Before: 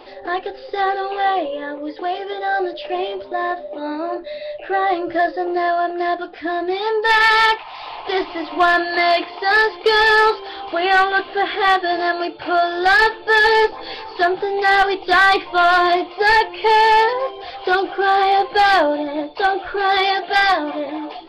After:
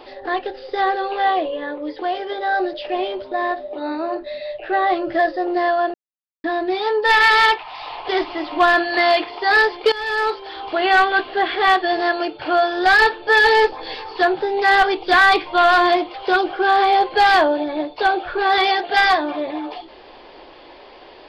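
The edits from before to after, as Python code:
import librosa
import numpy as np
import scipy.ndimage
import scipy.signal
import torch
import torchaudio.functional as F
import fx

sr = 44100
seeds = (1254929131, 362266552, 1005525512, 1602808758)

y = fx.edit(x, sr, fx.silence(start_s=5.94, length_s=0.5),
    fx.fade_in_from(start_s=9.92, length_s=0.75, floor_db=-18.5),
    fx.cut(start_s=16.14, length_s=1.39), tone=tone)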